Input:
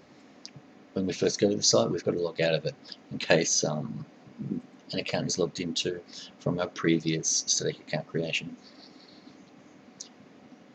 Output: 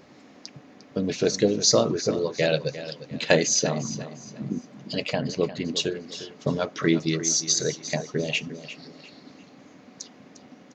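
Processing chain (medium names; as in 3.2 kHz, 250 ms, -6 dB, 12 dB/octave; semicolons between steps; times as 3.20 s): 5.13–5.68 s: low-pass 3.1 kHz 12 dB/octave; on a send: feedback delay 352 ms, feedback 32%, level -13.5 dB; on the sum: trim +3 dB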